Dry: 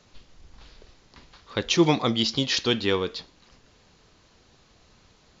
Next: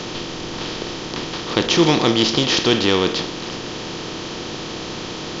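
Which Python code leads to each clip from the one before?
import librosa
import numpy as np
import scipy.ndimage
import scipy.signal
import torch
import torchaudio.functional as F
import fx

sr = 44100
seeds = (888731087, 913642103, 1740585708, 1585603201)

y = fx.bin_compress(x, sr, power=0.4)
y = F.gain(torch.from_numpy(y), 2.0).numpy()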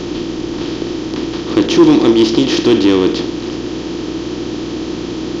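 y = fx.peak_eq(x, sr, hz=310.0, db=15.0, octaves=0.8)
y = 10.0 ** (-0.5 / 20.0) * np.tanh(y / 10.0 ** (-0.5 / 20.0))
y = fx.dmg_buzz(y, sr, base_hz=60.0, harmonics=6, level_db=-30.0, tilt_db=0, odd_only=False)
y = F.gain(torch.from_numpy(y), -1.0).numpy()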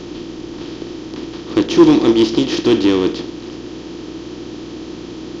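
y = fx.upward_expand(x, sr, threshold_db=-20.0, expansion=1.5)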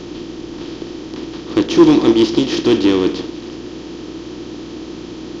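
y = x + 10.0 ** (-15.0 / 20.0) * np.pad(x, (int(187 * sr / 1000.0), 0))[:len(x)]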